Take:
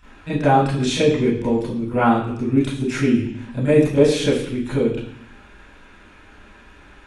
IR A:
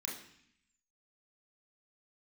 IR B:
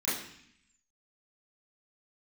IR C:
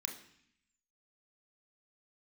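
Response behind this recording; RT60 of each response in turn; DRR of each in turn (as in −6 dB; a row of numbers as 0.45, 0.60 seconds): B; 0.65, 0.65, 0.65 seconds; −3.5, −12.5, 2.5 decibels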